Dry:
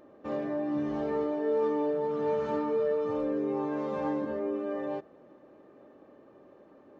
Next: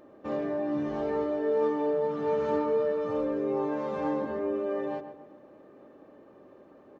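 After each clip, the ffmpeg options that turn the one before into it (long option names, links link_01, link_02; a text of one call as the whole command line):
ffmpeg -i in.wav -filter_complex "[0:a]asplit=2[link_01][link_02];[link_02]adelay=133,lowpass=frequency=2100:poles=1,volume=-9dB,asplit=2[link_03][link_04];[link_04]adelay=133,lowpass=frequency=2100:poles=1,volume=0.41,asplit=2[link_05][link_06];[link_06]adelay=133,lowpass=frequency=2100:poles=1,volume=0.41,asplit=2[link_07][link_08];[link_08]adelay=133,lowpass=frequency=2100:poles=1,volume=0.41,asplit=2[link_09][link_10];[link_10]adelay=133,lowpass=frequency=2100:poles=1,volume=0.41[link_11];[link_01][link_03][link_05][link_07][link_09][link_11]amix=inputs=6:normalize=0,volume=1.5dB" out.wav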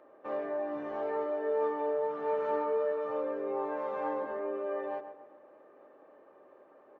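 ffmpeg -i in.wav -filter_complex "[0:a]acrossover=split=420 2500:gain=0.112 1 0.178[link_01][link_02][link_03];[link_01][link_02][link_03]amix=inputs=3:normalize=0" out.wav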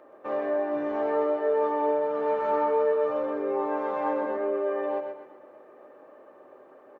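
ffmpeg -i in.wav -af "aecho=1:1:125|250|375|500|625:0.473|0.194|0.0795|0.0326|0.0134,volume=5.5dB" out.wav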